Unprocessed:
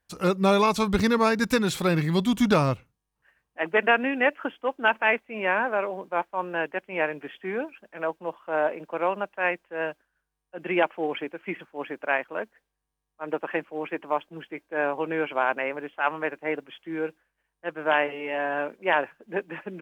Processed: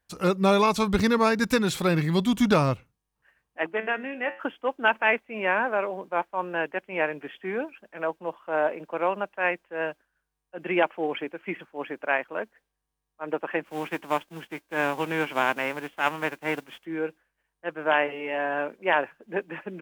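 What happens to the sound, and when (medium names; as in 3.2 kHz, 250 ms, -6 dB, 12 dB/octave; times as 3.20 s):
3.66–4.40 s: feedback comb 110 Hz, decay 0.37 s, mix 70%
13.64–16.84 s: formants flattened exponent 0.6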